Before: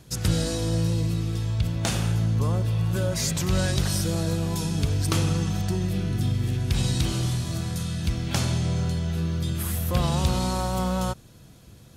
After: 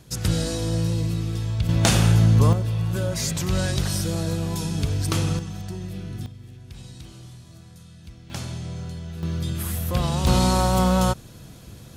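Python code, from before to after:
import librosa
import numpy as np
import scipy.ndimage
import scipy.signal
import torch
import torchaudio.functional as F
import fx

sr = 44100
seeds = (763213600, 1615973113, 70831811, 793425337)

y = fx.gain(x, sr, db=fx.steps((0.0, 0.5), (1.69, 7.5), (2.53, 0.0), (5.39, -7.0), (6.26, -17.0), (8.3, -7.5), (9.23, 0.0), (10.27, 6.5)))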